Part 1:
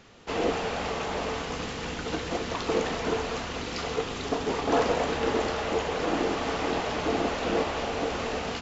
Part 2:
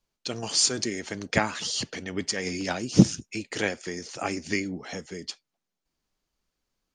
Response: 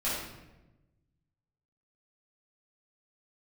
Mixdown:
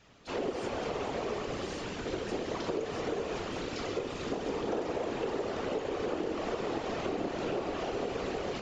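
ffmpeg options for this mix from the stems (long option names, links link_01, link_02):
-filter_complex "[0:a]volume=-2dB,asplit=2[link_01][link_02];[link_02]volume=-12.5dB[link_03];[1:a]acompressor=threshold=-30dB:ratio=10,flanger=delay=7.8:depth=6.6:regen=-34:speed=1.1:shape=triangular,volume=-10.5dB,asplit=2[link_04][link_05];[link_05]volume=-13.5dB[link_06];[2:a]atrim=start_sample=2205[link_07];[link_03][link_06]amix=inputs=2:normalize=0[link_08];[link_08][link_07]afir=irnorm=-1:irlink=0[link_09];[link_01][link_04][link_09]amix=inputs=3:normalize=0,afftfilt=real='hypot(re,im)*cos(2*PI*random(0))':imag='hypot(re,im)*sin(2*PI*random(1))':win_size=512:overlap=0.75,adynamicequalizer=threshold=0.00447:dfrequency=380:dqfactor=1.2:tfrequency=380:tqfactor=1.2:attack=5:release=100:ratio=0.375:range=4:mode=boostabove:tftype=bell,acompressor=threshold=-30dB:ratio=6"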